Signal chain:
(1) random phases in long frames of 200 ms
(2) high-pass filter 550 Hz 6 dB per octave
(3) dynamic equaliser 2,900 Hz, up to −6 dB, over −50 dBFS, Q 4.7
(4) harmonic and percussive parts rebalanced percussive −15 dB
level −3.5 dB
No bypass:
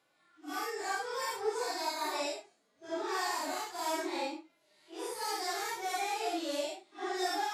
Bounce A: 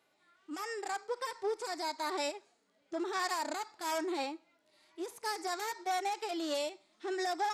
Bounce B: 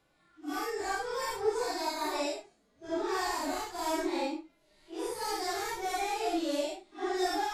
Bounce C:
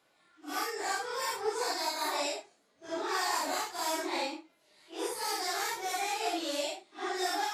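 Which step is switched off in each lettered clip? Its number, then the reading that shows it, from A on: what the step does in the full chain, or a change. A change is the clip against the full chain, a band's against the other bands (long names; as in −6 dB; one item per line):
1, 8 kHz band −2.5 dB
2, change in crest factor +1.5 dB
4, 8 kHz band +2.5 dB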